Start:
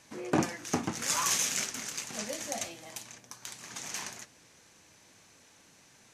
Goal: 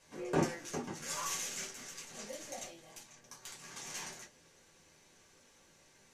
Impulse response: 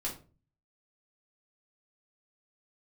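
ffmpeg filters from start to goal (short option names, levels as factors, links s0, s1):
-filter_complex "[0:a]asettb=1/sr,asplit=3[s0][s1][s2];[s0]atrim=end=0.714[s3];[s1]atrim=start=0.71:end=3.22,asetpts=PTS-STARTPTS,afade=t=in:d=0.004:c=qsin,afade=t=out:st=2.506:d=0.004:c=qsin,flanger=delay=1.1:depth=7.7:regen=81:speed=1.4:shape=triangular[s4];[s2]atrim=start=3.216[s5];[s3][s4]acrossfade=d=0.004:c1=hsin:c2=qsin[s6];[s6][s5]acrossfade=d=0.004:c1=qsin:c2=hsin[s7];[1:a]atrim=start_sample=2205,atrim=end_sample=3969,asetrate=70560,aresample=44100[s8];[s7][s8]afir=irnorm=-1:irlink=0,volume=0.75"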